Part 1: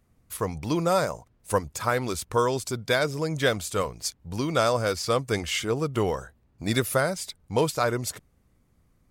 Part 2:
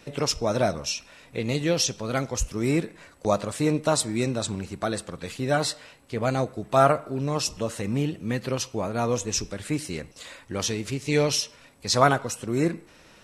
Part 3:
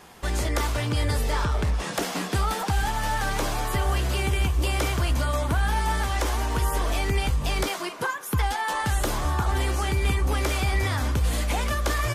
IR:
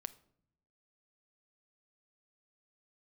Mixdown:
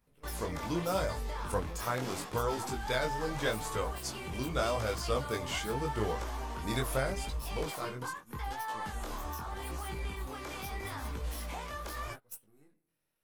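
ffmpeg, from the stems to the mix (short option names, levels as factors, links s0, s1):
-filter_complex "[0:a]volume=0.376,afade=t=out:st=7.11:d=0.56:silence=0.473151,asplit=2[s0][s1];[s1]volume=0.501[s2];[1:a]aeval=exprs='if(lt(val(0),0),0.447*val(0),val(0))':c=same,acompressor=threshold=0.0316:ratio=16,aexciter=amount=11.5:drive=4.4:freq=9800,volume=0.316,asplit=2[s3][s4];[s4]volume=0.106[s5];[2:a]equalizer=f=100:t=o:w=0.67:g=-7,equalizer=f=1000:t=o:w=0.67:g=5,equalizer=f=10000:t=o:w=0.67:g=-4,volume=0.422[s6];[s3][s6]amix=inputs=2:normalize=0,agate=range=0.0398:threshold=0.0126:ratio=16:detection=peak,alimiter=level_in=1.5:limit=0.0631:level=0:latency=1:release=156,volume=0.668,volume=1[s7];[3:a]atrim=start_sample=2205[s8];[s2][s5]amix=inputs=2:normalize=0[s9];[s9][s8]afir=irnorm=-1:irlink=0[s10];[s0][s7][s10]amix=inputs=3:normalize=0,flanger=delay=18:depth=6:speed=0.81"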